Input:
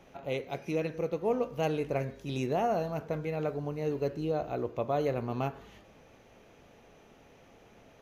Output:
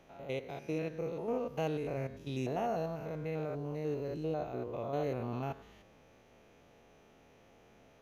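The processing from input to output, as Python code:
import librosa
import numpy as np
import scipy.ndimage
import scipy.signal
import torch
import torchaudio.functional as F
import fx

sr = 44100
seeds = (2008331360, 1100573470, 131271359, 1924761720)

y = fx.spec_steps(x, sr, hold_ms=100)
y = F.gain(torch.from_numpy(y), -3.0).numpy()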